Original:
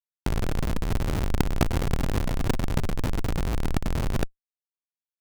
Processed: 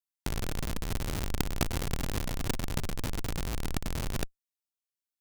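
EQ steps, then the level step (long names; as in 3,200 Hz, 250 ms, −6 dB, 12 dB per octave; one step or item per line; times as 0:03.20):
high-shelf EQ 2,600 Hz +10 dB
−7.5 dB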